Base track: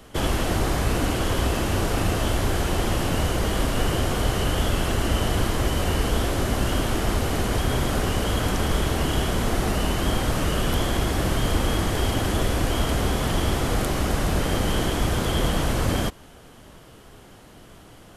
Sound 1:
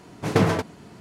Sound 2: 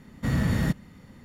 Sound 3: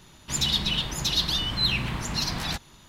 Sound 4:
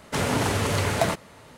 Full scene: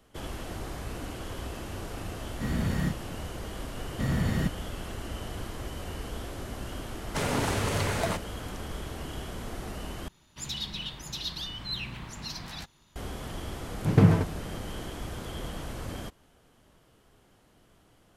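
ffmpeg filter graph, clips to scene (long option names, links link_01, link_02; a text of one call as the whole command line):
ffmpeg -i bed.wav -i cue0.wav -i cue1.wav -i cue2.wav -i cue3.wav -filter_complex "[2:a]asplit=2[link_01][link_02];[0:a]volume=-14.5dB[link_03];[link_01]asplit=2[link_04][link_05];[link_05]adelay=33,volume=-3dB[link_06];[link_04][link_06]amix=inputs=2:normalize=0[link_07];[4:a]alimiter=limit=-11.5dB:level=0:latency=1:release=103[link_08];[1:a]bass=frequency=250:gain=13,treble=frequency=4000:gain=-8[link_09];[link_03]asplit=2[link_10][link_11];[link_10]atrim=end=10.084[link_12];[3:a]atrim=end=2.88,asetpts=PTS-STARTPTS,volume=-10.5dB[link_13];[link_11]atrim=start=12.956[link_14];[link_07]atrim=end=1.24,asetpts=PTS-STARTPTS,volume=-6.5dB,afade=type=in:duration=0.004:curve=hsin,afade=type=out:start_time=1.236:duration=0.004:curve=hsin,adelay=2170[link_15];[link_02]atrim=end=1.24,asetpts=PTS-STARTPTS,volume=-3.5dB,afade=type=in:duration=0.004:curve=hsin,afade=type=out:start_time=1.236:duration=0.004:curve=hsin,adelay=3760[link_16];[link_08]atrim=end=1.57,asetpts=PTS-STARTPTS,volume=-4.5dB,afade=type=in:duration=0.004:curve=hsin,afade=type=out:start_time=1.566:duration=0.004:curve=hsin,adelay=7020[link_17];[link_09]atrim=end=1,asetpts=PTS-STARTPTS,volume=-7.5dB,afade=type=in:duration=0.004:curve=hsin,afade=type=out:start_time=0.996:duration=0.004:curve=hsin,adelay=13620[link_18];[link_12][link_13]acrossfade=duration=0.004:curve1=hsin:curve2=hsin[link_19];[link_19][link_14]acrossfade=duration=0.004:curve1=hsin:curve2=hsin[link_20];[link_20][link_15][link_16][link_17][link_18]amix=inputs=5:normalize=0" out.wav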